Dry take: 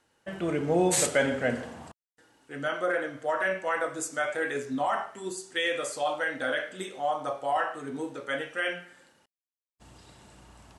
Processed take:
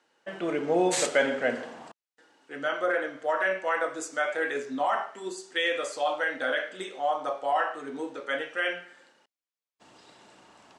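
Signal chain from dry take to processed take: band-pass 290–6300 Hz; trim +1.5 dB

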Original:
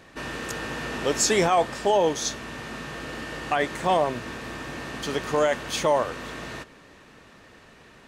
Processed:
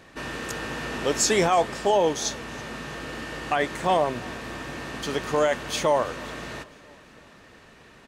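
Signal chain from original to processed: feedback delay 329 ms, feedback 54%, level -23 dB

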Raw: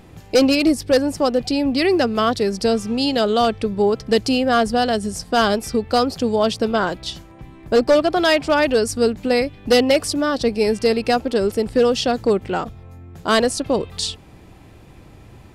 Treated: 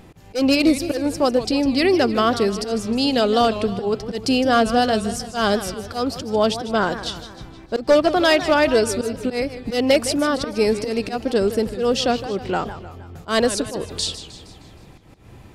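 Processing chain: slow attack 150 ms; modulated delay 156 ms, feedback 51%, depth 206 cents, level -12.5 dB

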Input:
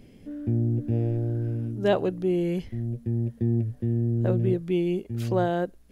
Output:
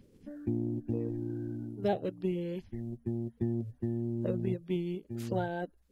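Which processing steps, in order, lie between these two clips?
coarse spectral quantiser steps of 30 dB; transient shaper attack +5 dB, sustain -5 dB; trim -9 dB

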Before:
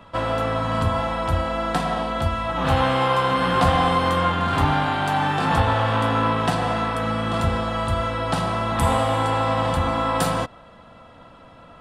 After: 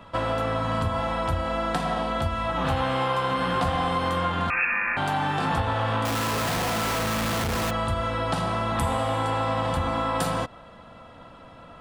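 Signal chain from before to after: compression 3:1, threshold -23 dBFS, peak gain reduction 7.5 dB; 4.50–4.97 s: frequency inversion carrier 2.6 kHz; 6.05–7.71 s: Schmitt trigger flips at -42 dBFS

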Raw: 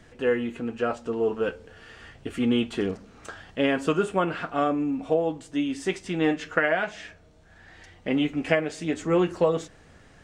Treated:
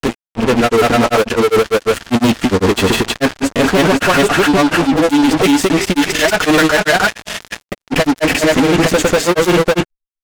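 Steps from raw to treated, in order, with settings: fuzz box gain 38 dB, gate -41 dBFS; granulator 100 ms, grains 20 per s, spray 536 ms, pitch spread up and down by 0 st; trim +5.5 dB

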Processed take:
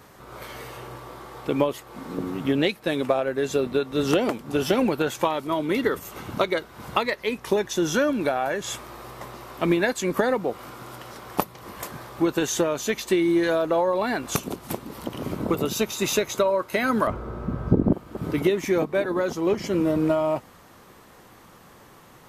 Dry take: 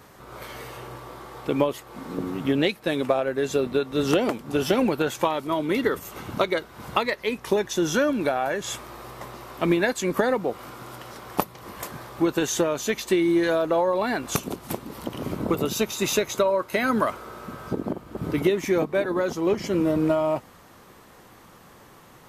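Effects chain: 17.07–17.93 s: tilt EQ -4.5 dB/octave

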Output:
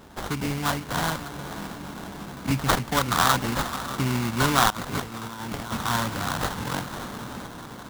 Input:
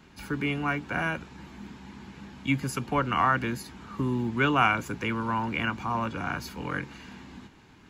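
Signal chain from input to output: resonant high shelf 4.6 kHz +11.5 dB, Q 3; echo that smears into a reverb 544 ms, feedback 59%, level -11.5 dB; 4.70–5.77 s: compressor with a negative ratio -34 dBFS, ratio -0.5; sample-rate reducer 2.5 kHz, jitter 20%; dynamic bell 360 Hz, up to -6 dB, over -42 dBFS, Q 1.1; trim +4.5 dB

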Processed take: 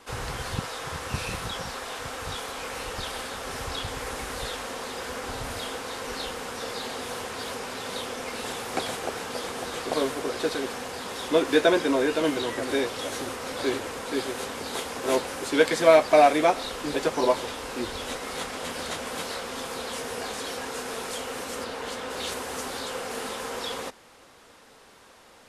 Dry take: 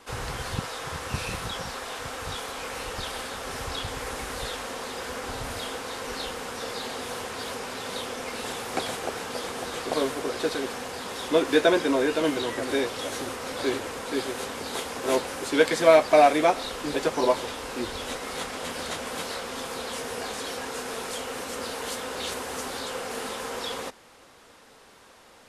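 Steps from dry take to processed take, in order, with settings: 21.63–22.09 s: treble shelf 5.5 kHz -> 8.7 kHz -12 dB

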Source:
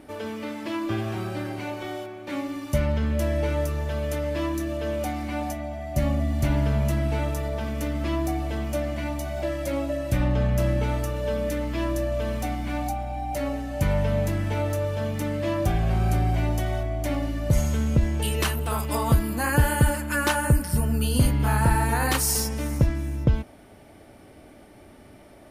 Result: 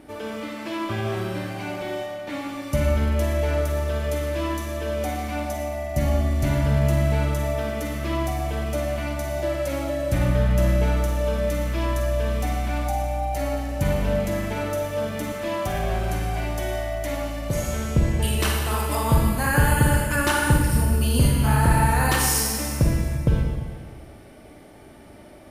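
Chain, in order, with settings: 15.32–17.96 s: bass shelf 200 Hz -9 dB; Schroeder reverb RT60 1.6 s, DRR 0 dB

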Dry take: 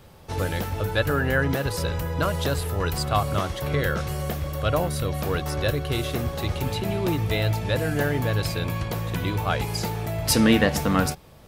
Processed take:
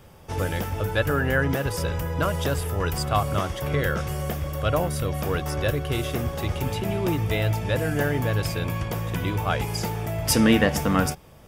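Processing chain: band-stop 4.1 kHz, Q 5.2

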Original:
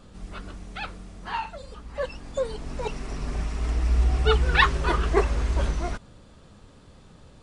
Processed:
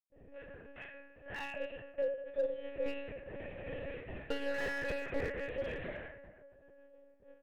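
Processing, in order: trance gate ".xxxxxx.x" 129 bpm -60 dB; feedback comb 74 Hz, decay 0.5 s, harmonics all, mix 100%; in parallel at -8 dB: short-mantissa float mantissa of 2-bit; on the sum: vowel filter e; compression 16:1, threshold -44 dBFS, peak gain reduction 14 dB; bass shelf 290 Hz +7 dB; feedback delay 402 ms, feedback 25%, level -16 dB; spring tank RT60 1.1 s, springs 33/53 ms, chirp 45 ms, DRR 2 dB; level-controlled noise filter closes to 1 kHz, open at -43.5 dBFS; peaking EQ 69 Hz -6 dB 2.1 oct; monotone LPC vocoder at 8 kHz 280 Hz; slew-rate limiter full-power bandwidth 5.7 Hz; trim +12 dB

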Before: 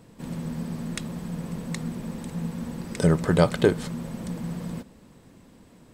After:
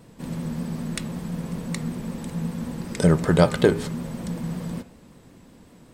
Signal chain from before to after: de-hum 102.7 Hz, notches 30; vibrato 5.3 Hz 46 cents; trim +2.5 dB

